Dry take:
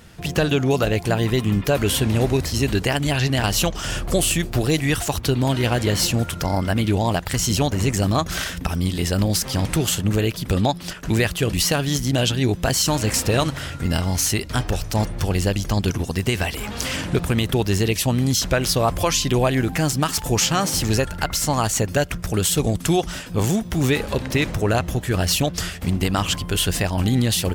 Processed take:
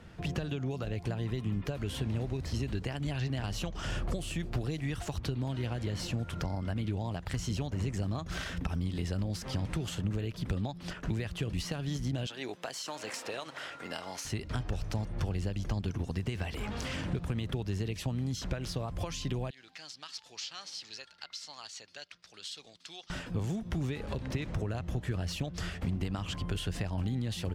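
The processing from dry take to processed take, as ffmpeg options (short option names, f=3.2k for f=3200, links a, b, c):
-filter_complex "[0:a]asettb=1/sr,asplit=3[a][b][c];[a]atrim=end=12.264[d];[b]atrim=start=12.26:end=14.25,asetpts=PTS-STARTPTS,afade=t=in:d=0.004:c=qsin,afade=t=out:st=1.986:d=0.004:c=qsin,highpass=540[e];[c]atrim=start=14.246[f];[d][e]acrossfade=d=0.004:c1=hsin:c2=qsin[g];[g][f]acrossfade=d=0.004:c1=qsin:c2=hsin,asettb=1/sr,asplit=3[h][i][j];[h]atrim=end=19.504[k];[i]atrim=start=19.5:end=23.1,asetpts=PTS-STARTPTS,afade=t=in:d=0.004:c=qsin,afade=t=out:st=3.596:d=0.004:c=qsin,bandpass=f=4.4k:t=q:w=2.8[l];[j]atrim=start=23.096[m];[k][l]acrossfade=d=0.004:c1=hsin:c2=qsin[n];[n][m]acrossfade=d=0.004:c1=qsin:c2=hsin,acompressor=threshold=-23dB:ratio=6,aemphasis=mode=reproduction:type=75fm,acrossover=split=190|3000[o][p][q];[p]acompressor=threshold=-33dB:ratio=3[r];[o][r][q]amix=inputs=3:normalize=0,volume=-5.5dB"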